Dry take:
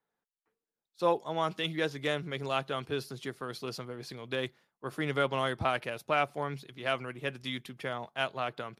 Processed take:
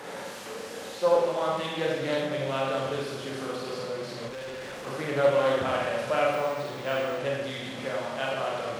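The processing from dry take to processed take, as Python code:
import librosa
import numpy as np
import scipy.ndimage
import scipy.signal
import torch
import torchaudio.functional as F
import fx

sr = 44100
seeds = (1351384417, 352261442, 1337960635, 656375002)

y = fx.delta_mod(x, sr, bps=64000, step_db=-33.0)
y = fx.lowpass(y, sr, hz=3300.0, slope=6)
y = fx.peak_eq(y, sr, hz=550.0, db=10.0, octaves=0.24)
y = fx.room_flutter(y, sr, wall_m=11.0, rt60_s=0.29)
y = fx.rev_schroeder(y, sr, rt60_s=1.2, comb_ms=30, drr_db=-3.5)
y = fx.resample_bad(y, sr, factor=2, down='filtered', up='hold', at=(6.33, 7.19))
y = scipy.signal.sosfilt(scipy.signal.butter(2, 97.0, 'highpass', fs=sr, output='sos'), y)
y = fx.clip_hard(y, sr, threshold_db=-33.5, at=(4.28, 4.87))
y = fx.doppler_dist(y, sr, depth_ms=0.21)
y = y * librosa.db_to_amplitude(-2.5)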